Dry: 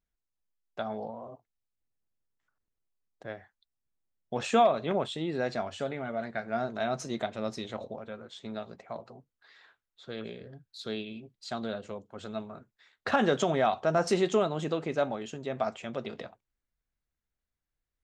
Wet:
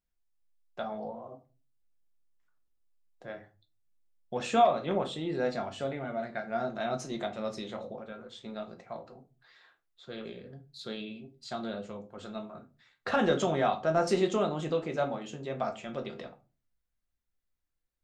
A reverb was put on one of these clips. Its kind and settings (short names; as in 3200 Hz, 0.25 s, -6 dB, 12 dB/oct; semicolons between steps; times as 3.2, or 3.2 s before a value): shoebox room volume 130 m³, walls furnished, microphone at 0.89 m; gain -3 dB